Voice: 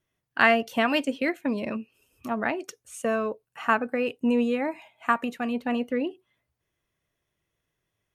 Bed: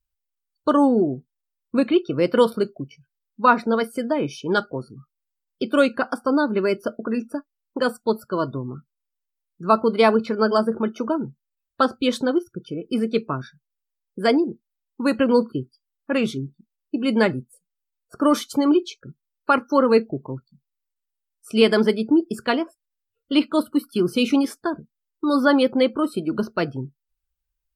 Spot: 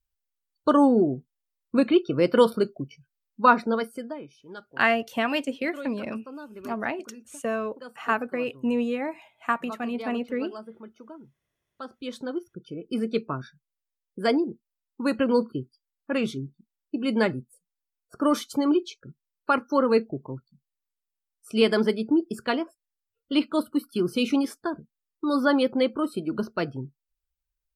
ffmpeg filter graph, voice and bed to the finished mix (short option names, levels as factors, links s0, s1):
-filter_complex "[0:a]adelay=4400,volume=0.794[s0];[1:a]volume=5.62,afade=t=out:st=3.47:d=0.8:silence=0.105925,afade=t=in:st=11.8:d=1.27:silence=0.149624[s1];[s0][s1]amix=inputs=2:normalize=0"